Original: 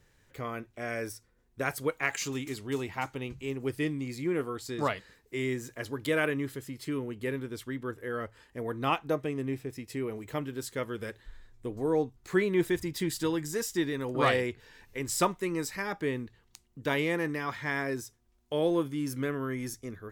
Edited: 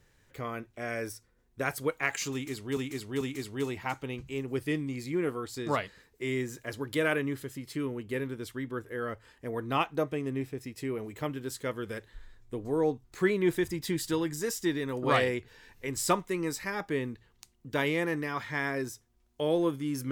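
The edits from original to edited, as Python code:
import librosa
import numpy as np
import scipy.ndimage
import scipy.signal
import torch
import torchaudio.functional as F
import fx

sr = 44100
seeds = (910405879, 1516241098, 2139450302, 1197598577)

y = fx.edit(x, sr, fx.repeat(start_s=2.33, length_s=0.44, count=3), tone=tone)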